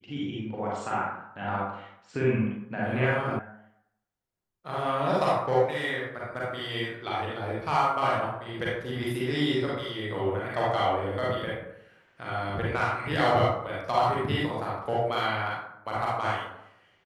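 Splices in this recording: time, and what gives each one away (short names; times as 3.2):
3.39 sound cut off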